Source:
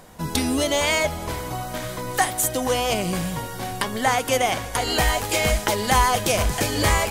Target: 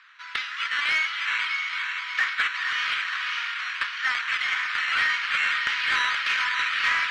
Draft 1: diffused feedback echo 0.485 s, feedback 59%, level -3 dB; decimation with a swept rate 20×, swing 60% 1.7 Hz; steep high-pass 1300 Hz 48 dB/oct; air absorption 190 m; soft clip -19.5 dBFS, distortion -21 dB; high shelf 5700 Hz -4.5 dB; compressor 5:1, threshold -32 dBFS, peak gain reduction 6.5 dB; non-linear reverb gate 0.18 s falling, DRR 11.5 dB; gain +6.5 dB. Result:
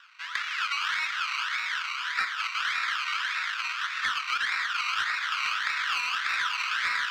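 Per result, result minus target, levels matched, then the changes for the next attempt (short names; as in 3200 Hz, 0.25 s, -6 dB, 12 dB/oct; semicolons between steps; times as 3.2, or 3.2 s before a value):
compressor: peak gain reduction +6.5 dB; decimation with a swept rate: distortion +7 dB; 8000 Hz band +4.5 dB
remove: compressor 5:1, threshold -32 dBFS, peak gain reduction 6.5 dB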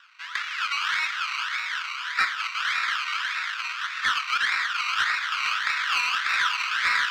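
decimation with a swept rate: distortion +7 dB; 8000 Hz band +4.5 dB
change: decimation with a swept rate 7×, swing 60% 1.7 Hz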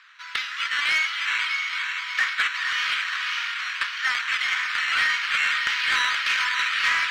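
8000 Hz band +4.5 dB
change: high shelf 5700 Hz -15 dB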